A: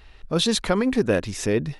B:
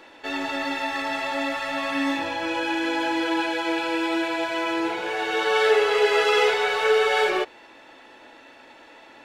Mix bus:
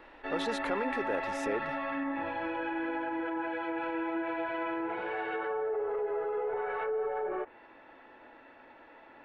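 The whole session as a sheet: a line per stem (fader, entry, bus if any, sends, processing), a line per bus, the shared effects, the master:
−1.5 dB, 0.00 s, no send, downward compressor, threshold −21 dBFS, peak gain reduction 6.5 dB; brickwall limiter −18 dBFS, peak gain reduction 6 dB; three-way crossover with the lows and the highs turned down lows −22 dB, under 350 Hz, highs −15 dB, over 2,400 Hz
−5.0 dB, 0.00 s, no send, treble cut that deepens with the level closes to 790 Hz, closed at −17 dBFS; Chebyshev low-pass filter 1,700 Hz, order 2; brickwall limiter −21.5 dBFS, peak gain reduction 10.5 dB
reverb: not used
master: low-shelf EQ 68 Hz +6 dB

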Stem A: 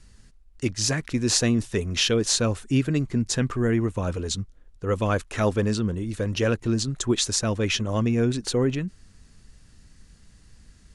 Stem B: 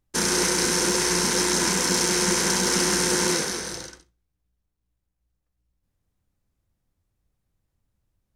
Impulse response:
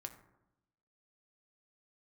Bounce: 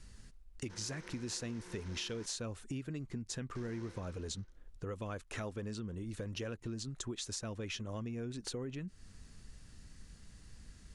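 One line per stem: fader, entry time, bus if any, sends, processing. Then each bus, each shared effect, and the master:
−2.5 dB, 0.00 s, no send, downward compressor 2 to 1, threshold −38 dBFS, peak gain reduction 11.5 dB
−14.5 dB, 0.55 s, muted 0:02.26–0:03.55, no send, low-pass filter 3,500 Hz 12 dB per octave; automatic ducking −11 dB, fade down 0.80 s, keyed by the first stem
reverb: not used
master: downward compressor 2.5 to 1, threshold −40 dBFS, peak gain reduction 7 dB

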